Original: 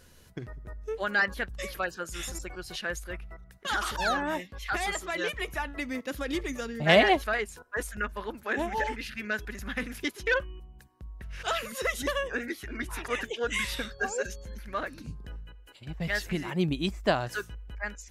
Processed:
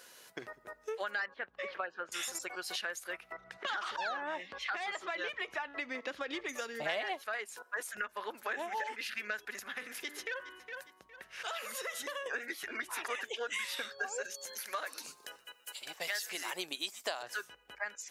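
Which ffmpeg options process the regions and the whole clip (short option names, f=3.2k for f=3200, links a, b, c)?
-filter_complex "[0:a]asettb=1/sr,asplit=3[a][b][c];[a]atrim=end=1.264[d];[b]atrim=start=1.26:end=2.12,asetpts=PTS-STARTPTS,afade=t=in:d=0.004:c=qsin,afade=t=out:st=0.856:d=0.004:c=qsin,lowpass=3k,aemphasis=mode=reproduction:type=75kf[e];[c]atrim=start=2.116[f];[d][e]acrossfade=d=0.004:c1=hsin:c2=qsin[g];[g][f]acrossfade=d=0.004:c1=qsin:c2=hsin,asettb=1/sr,asplit=3[h][i][j];[h]atrim=end=3.324[k];[i]atrim=start=3.32:end=6.49,asetpts=PTS-STARTPTS,afade=t=in:d=0.004:c=qsin,afade=t=out:st=3.166:d=0.004:c=qsin,lowpass=4.2k,lowshelf=f=160:g=6.5,acompressor=mode=upward:threshold=-31dB:ratio=2.5:attack=3.2:release=140:knee=2.83:detection=peak[l];[j]atrim=start=6.486[m];[k][l]acrossfade=d=0.004:c1=hsin:c2=qsin[n];[n][m]acrossfade=d=0.004:c1=qsin:c2=hsin,asettb=1/sr,asplit=3[o][p][q];[o]atrim=end=9.594[r];[p]atrim=start=9.59:end=12.26,asetpts=PTS-STARTPTS,afade=t=in:d=0.004:c=qsin,afade=t=out:st=2.666:d=0.004:c=qsin,bandreject=f=98.8:t=h:w=4,bandreject=f=197.6:t=h:w=4,bandreject=f=296.4:t=h:w=4,bandreject=f=395.2:t=h:w=4,bandreject=f=494:t=h:w=4,bandreject=f=592.8:t=h:w=4,bandreject=f=691.6:t=h:w=4,bandreject=f=790.4:t=h:w=4,bandreject=f=889.2:t=h:w=4,bandreject=f=988:t=h:w=4,bandreject=f=1.0868k:t=h:w=4,bandreject=f=1.1856k:t=h:w=4,bandreject=f=1.2844k:t=h:w=4,bandreject=f=1.3832k:t=h:w=4,bandreject=f=1.482k:t=h:w=4,bandreject=f=1.5808k:t=h:w=4,bandreject=f=1.6796k:t=h:w=4,bandreject=f=1.7784k:t=h:w=4,bandreject=f=1.8772k:t=h:w=4,bandreject=f=1.976k:t=h:w=4,bandreject=f=2.0748k:t=h:w=4,aecho=1:1:411|822:0.0891|0.0267,atrim=end_sample=117747,acompressor=threshold=-42dB:ratio=2.5:attack=3.2:release=140:knee=1:detection=peak[s];[q]atrim=start=12.256[t];[r][s]acrossfade=d=0.004:c1=hsin:c2=qsin[u];[u][t]acrossfade=d=0.004:c1=qsin:c2=hsin,asettb=1/sr,asplit=3[v][w][x];[v]atrim=end=14.344[y];[w]atrim=start=14.34:end=17.23,asetpts=PTS-STARTPTS,afade=t=in:d=0.004:c=qsin,afade=t=out:st=2.886:d=0.004:c=qsin,bass=f=250:g=-14,treble=f=4k:g=13,asplit=3[z][aa][ab];[aa]adelay=124,afreqshift=-140,volume=-22dB[ac];[ab]adelay=248,afreqshift=-280,volume=-31.1dB[ad];[z][ac][ad]amix=inputs=3:normalize=0,atrim=end_sample=127449[ae];[x]atrim=start=17.226[af];[y][ae]acrossfade=d=0.004:c1=hsin:c2=qsin[ag];[ag][af]acrossfade=d=0.004:c1=qsin:c2=hsin,highpass=570,acompressor=threshold=-40dB:ratio=5,volume=4.5dB"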